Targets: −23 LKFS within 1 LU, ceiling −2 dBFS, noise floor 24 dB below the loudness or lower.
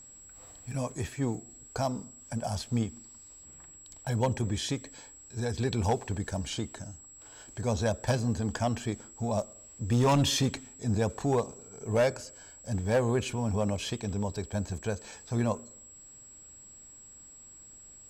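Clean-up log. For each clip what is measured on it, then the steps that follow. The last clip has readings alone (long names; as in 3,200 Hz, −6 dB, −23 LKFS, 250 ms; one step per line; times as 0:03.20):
share of clipped samples 0.5%; peaks flattened at −19.5 dBFS; interfering tone 7,700 Hz; level of the tone −49 dBFS; integrated loudness −31.5 LKFS; sample peak −19.5 dBFS; target loudness −23.0 LKFS
→ clipped peaks rebuilt −19.5 dBFS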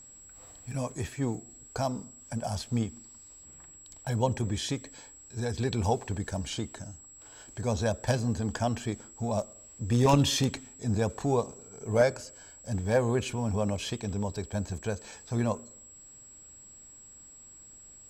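share of clipped samples 0.0%; interfering tone 7,700 Hz; level of the tone −49 dBFS
→ notch filter 7,700 Hz, Q 30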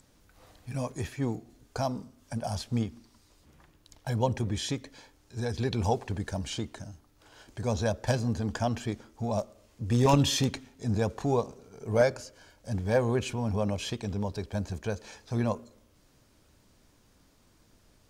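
interfering tone none found; integrated loudness −31.0 LKFS; sample peak −10.5 dBFS; target loudness −23.0 LKFS
→ level +8 dB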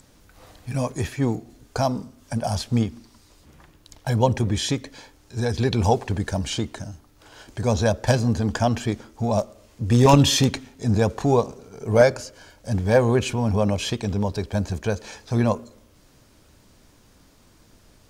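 integrated loudness −23.0 LKFS; sample peak −2.5 dBFS; background noise floor −55 dBFS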